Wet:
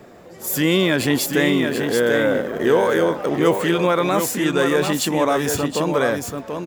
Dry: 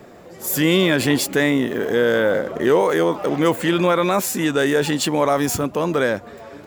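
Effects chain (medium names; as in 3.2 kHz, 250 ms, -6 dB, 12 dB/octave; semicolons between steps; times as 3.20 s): delay 734 ms -6 dB; trim -1 dB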